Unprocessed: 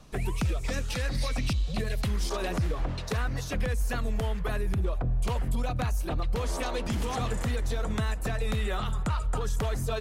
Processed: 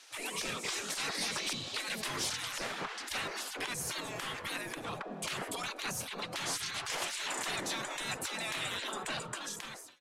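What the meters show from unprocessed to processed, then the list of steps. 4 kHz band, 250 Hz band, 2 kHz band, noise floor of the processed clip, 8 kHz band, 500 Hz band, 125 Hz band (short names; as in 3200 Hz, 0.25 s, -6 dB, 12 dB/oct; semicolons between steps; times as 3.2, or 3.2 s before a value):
+4.0 dB, -11.0 dB, +1.0 dB, -46 dBFS, +4.5 dB, -9.0 dB, -20.5 dB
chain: ending faded out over 0.87 s; spectral gate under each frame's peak -25 dB weak; in parallel at -3.5 dB: sine folder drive 11 dB, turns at -23 dBFS; on the sum: LPF 11000 Hz 12 dB/oct; gain -5.5 dB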